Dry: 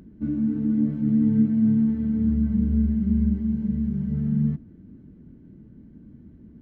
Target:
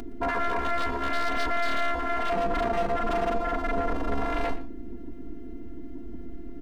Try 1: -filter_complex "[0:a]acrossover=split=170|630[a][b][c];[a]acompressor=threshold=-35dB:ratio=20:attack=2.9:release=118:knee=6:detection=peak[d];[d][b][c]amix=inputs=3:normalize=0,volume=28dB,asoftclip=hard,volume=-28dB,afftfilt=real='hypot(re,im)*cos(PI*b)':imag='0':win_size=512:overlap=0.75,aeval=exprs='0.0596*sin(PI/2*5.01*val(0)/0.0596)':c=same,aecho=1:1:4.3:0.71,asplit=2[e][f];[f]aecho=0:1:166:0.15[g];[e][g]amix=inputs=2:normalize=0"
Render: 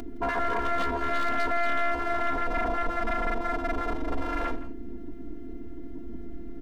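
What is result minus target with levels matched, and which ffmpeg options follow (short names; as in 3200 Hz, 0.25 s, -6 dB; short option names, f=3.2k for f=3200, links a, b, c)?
compressor: peak gain reduction +15 dB; echo 48 ms late
-filter_complex "[0:a]volume=28dB,asoftclip=hard,volume=-28dB,afftfilt=real='hypot(re,im)*cos(PI*b)':imag='0':win_size=512:overlap=0.75,aeval=exprs='0.0596*sin(PI/2*5.01*val(0)/0.0596)':c=same,aecho=1:1:4.3:0.71,asplit=2[a][b];[b]aecho=0:1:118:0.15[c];[a][c]amix=inputs=2:normalize=0"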